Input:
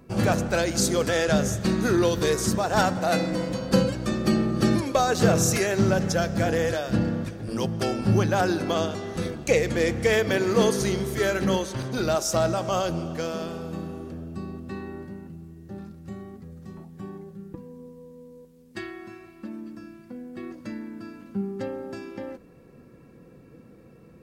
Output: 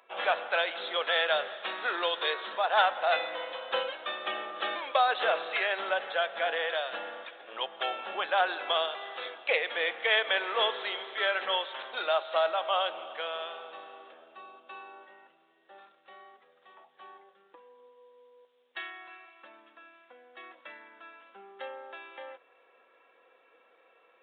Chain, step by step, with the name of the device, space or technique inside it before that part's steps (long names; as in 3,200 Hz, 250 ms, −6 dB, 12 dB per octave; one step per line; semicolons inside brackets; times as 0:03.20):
musical greeting card (downsampling to 8,000 Hz; high-pass filter 650 Hz 24 dB per octave; parametric band 3,400 Hz +6 dB 0.53 octaves)
0:14.41–0:15.07: notch filter 1,900 Hz, Q 5.8